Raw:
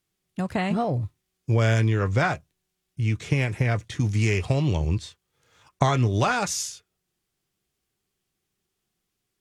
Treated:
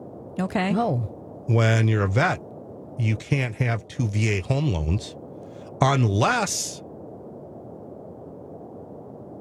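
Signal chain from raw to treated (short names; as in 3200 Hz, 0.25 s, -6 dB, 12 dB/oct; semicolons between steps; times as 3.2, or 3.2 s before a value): band noise 86–640 Hz -42 dBFS; 3.22–4.88 upward expander 1.5:1, over -31 dBFS; gain +2 dB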